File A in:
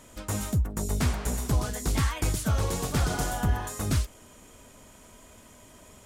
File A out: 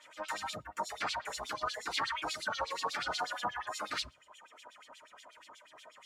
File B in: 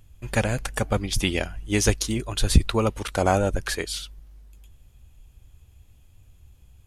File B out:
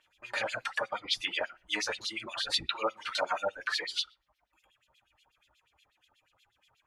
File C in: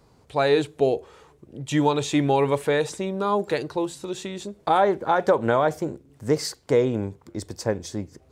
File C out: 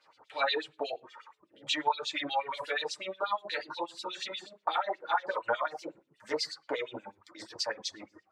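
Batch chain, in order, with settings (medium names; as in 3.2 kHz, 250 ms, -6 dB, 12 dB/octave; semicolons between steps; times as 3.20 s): simulated room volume 130 m³, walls furnished, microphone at 2.5 m; dynamic bell 4.4 kHz, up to +6 dB, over -46 dBFS, Q 3.1; LFO band-pass sine 8.3 Hz 870–3900 Hz; compression 2:1, threshold -36 dBFS; harmonic tremolo 4.9 Hz, depth 50%, crossover 1.5 kHz; bass shelf 270 Hz -10.5 dB; reverb removal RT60 0.99 s; trim +6 dB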